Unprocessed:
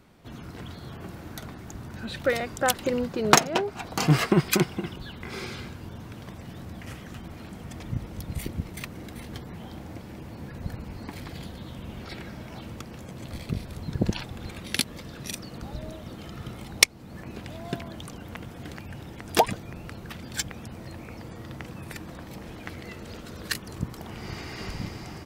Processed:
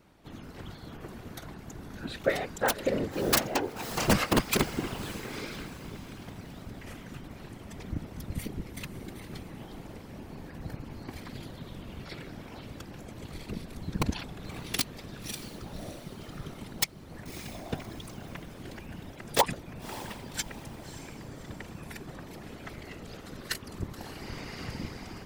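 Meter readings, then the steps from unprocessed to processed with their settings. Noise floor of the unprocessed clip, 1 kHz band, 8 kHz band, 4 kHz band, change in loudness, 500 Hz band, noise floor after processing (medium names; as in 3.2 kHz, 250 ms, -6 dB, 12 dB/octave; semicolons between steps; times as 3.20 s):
-43 dBFS, -4.5 dB, -5.5 dB, -4.5 dB, -4.5 dB, -3.5 dB, -47 dBFS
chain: integer overflow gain 10.5 dB; echo that smears into a reverb 586 ms, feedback 41%, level -13 dB; whisper effect; trim -3.5 dB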